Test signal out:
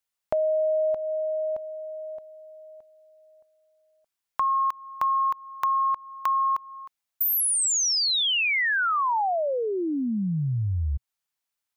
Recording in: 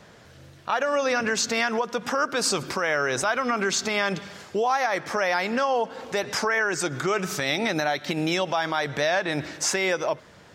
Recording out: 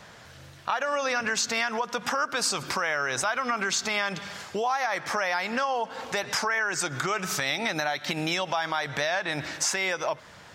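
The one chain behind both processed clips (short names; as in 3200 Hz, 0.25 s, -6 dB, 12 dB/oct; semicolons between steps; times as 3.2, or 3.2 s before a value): EQ curve 120 Hz 0 dB, 400 Hz -4 dB, 860 Hz +4 dB; compressor 2.5:1, threshold -26 dBFS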